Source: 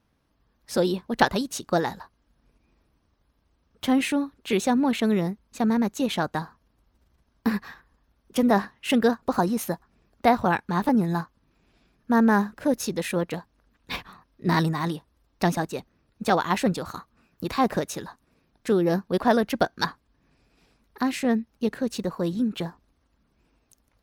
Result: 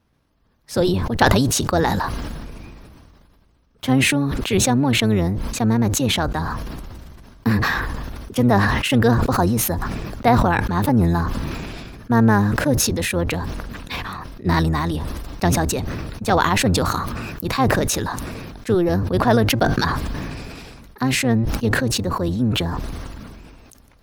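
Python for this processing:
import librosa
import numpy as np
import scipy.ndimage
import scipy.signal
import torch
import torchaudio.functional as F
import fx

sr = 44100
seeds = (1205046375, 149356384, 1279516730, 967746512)

y = fx.octave_divider(x, sr, octaves=1, level_db=-2.0)
y = fx.sustainer(y, sr, db_per_s=24.0)
y = y * librosa.db_to_amplitude(2.5)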